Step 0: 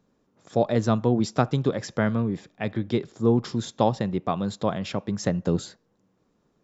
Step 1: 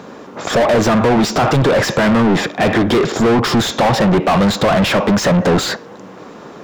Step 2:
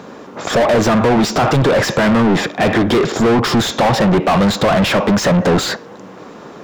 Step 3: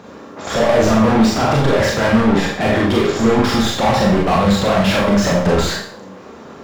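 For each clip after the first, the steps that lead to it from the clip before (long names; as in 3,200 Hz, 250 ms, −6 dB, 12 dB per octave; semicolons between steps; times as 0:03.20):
brickwall limiter −12.5 dBFS, peak gain reduction 8 dB; downward compressor, threshold −23 dBFS, peak gain reduction 6.5 dB; mid-hump overdrive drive 40 dB, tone 1,800 Hz, clips at −12.5 dBFS; level +7.5 dB
no processing that can be heard
parametric band 78 Hz +12 dB 0.49 octaves; four-comb reverb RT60 0.53 s, combs from 28 ms, DRR −2.5 dB; level −6 dB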